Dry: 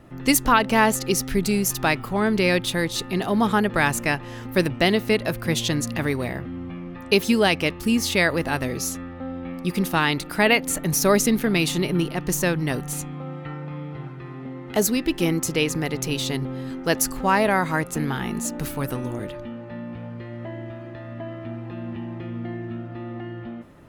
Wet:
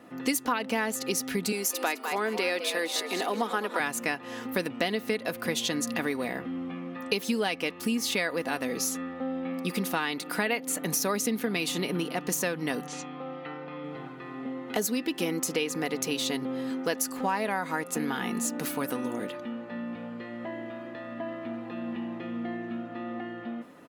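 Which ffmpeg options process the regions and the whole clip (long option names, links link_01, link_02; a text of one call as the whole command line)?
ffmpeg -i in.wav -filter_complex "[0:a]asettb=1/sr,asplit=3[link_01][link_02][link_03];[link_01]atrim=end=1.524[link_04];[link_02]atrim=start=1.52:end=3.8,asetpts=PTS-STARTPTS,afade=type=in:duration=0.004:curve=qsin,afade=type=out:start_time=2.276:duration=0.004:curve=qsin,highpass=frequency=270:width=0.5412,highpass=frequency=270:width=1.3066,asplit=5[link_05][link_06][link_07][link_08][link_09];[link_06]adelay=208,afreqshift=120,volume=-11dB[link_10];[link_07]adelay=416,afreqshift=240,volume=-20.4dB[link_11];[link_08]adelay=624,afreqshift=360,volume=-29.7dB[link_12];[link_09]adelay=832,afreqshift=480,volume=-39.1dB[link_13];[link_05][link_10][link_11][link_12][link_13]amix=inputs=5:normalize=0,atrim=end_sample=100548[link_14];[link_03]atrim=start=3.796[link_15];[link_04][link_14]acrossfade=duration=0.004:curve1=hsin:curve2=qsin[link_16];[link_16][link_15]acrossfade=duration=0.004:curve1=qsin:curve2=hsin,asettb=1/sr,asplit=3[link_17][link_18][link_19];[link_17]atrim=end=12.874[link_20];[link_18]atrim=start=12.87:end=13.84,asetpts=PTS-STARTPTS,afade=type=in:duration=0.004:curve=qsin,afade=type=out:start_time=0.966:duration=0.004:curve=qsin,lowpass=frequency=5600:width=0.5412,lowpass=frequency=5600:width=1.3066,lowshelf=frequency=330:gain=-6[link_21];[link_19]atrim=start=13.836[link_22];[link_20][link_21]acrossfade=duration=0.004:curve1=hsin:curve2=qsin[link_23];[link_23][link_22]acrossfade=duration=0.004:curve1=qsin:curve2=hsin,highpass=240,aecho=1:1:4.1:0.41,acompressor=threshold=-26dB:ratio=4" out.wav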